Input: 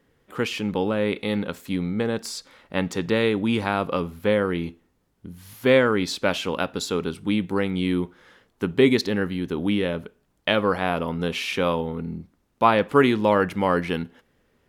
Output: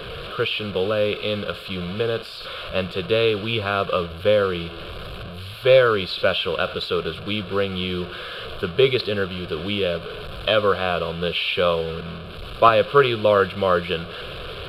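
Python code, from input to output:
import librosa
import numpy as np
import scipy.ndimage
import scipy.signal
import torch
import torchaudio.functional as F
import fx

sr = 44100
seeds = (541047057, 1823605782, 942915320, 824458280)

y = fx.delta_mod(x, sr, bps=64000, step_db=-29.0)
y = fx.high_shelf_res(y, sr, hz=5400.0, db=-13.0, q=1.5)
y = fx.fixed_phaser(y, sr, hz=1300.0, stages=8)
y = fx.band_widen(y, sr, depth_pct=40, at=(12.01, 12.69))
y = F.gain(torch.from_numpy(y), 4.5).numpy()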